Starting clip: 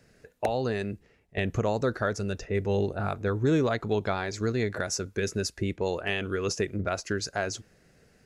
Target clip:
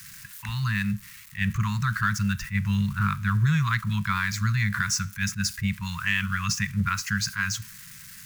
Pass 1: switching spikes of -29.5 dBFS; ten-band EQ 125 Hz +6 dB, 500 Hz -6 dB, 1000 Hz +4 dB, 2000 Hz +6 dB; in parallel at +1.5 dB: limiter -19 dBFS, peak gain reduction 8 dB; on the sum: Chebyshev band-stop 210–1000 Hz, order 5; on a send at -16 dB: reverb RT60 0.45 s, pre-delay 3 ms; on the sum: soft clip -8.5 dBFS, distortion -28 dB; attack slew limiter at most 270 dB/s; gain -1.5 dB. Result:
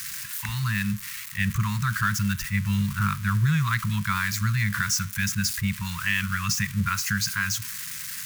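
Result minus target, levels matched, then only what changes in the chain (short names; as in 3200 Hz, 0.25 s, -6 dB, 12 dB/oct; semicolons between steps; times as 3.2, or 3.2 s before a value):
switching spikes: distortion +10 dB
change: switching spikes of -40 dBFS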